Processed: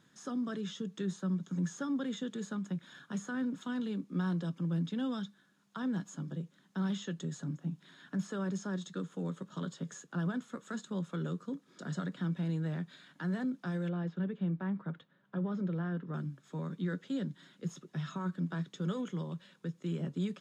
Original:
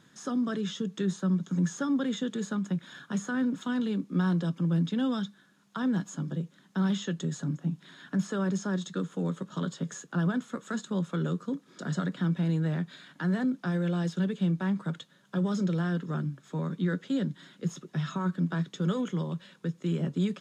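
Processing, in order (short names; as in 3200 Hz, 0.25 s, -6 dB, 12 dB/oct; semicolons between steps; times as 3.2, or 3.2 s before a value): 13.89–16.14 LPF 2100 Hz 12 dB/oct; gain -6.5 dB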